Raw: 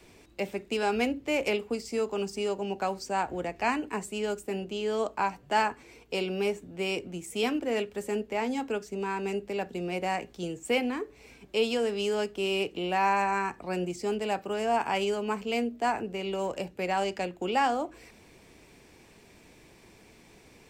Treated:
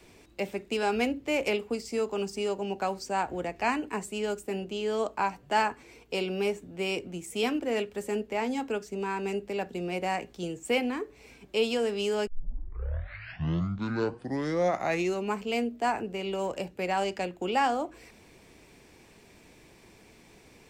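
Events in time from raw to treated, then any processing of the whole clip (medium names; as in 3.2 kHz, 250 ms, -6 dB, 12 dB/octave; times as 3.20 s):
12.27 s: tape start 3.12 s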